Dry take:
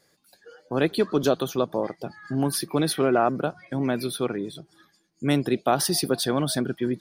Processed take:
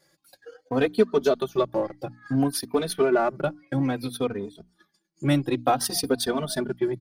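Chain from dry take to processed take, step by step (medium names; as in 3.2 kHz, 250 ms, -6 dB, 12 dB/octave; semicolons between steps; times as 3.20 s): transient shaper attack +4 dB, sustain -12 dB; hum notches 60/120/180/240/300 Hz; in parallel at -9 dB: hard clipper -22.5 dBFS, distortion -6 dB; on the sum: endless flanger 3.1 ms -0.58 Hz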